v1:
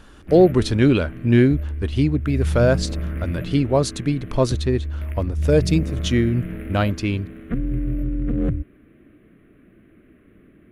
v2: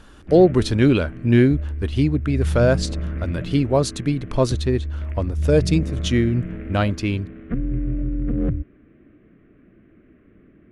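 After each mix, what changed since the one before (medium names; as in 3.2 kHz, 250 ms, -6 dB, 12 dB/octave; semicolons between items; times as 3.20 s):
background: add distance through air 280 m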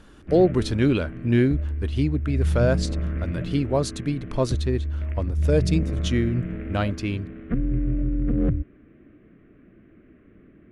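speech -4.5 dB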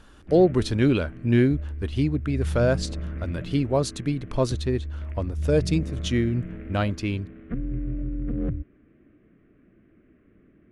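background -5.5 dB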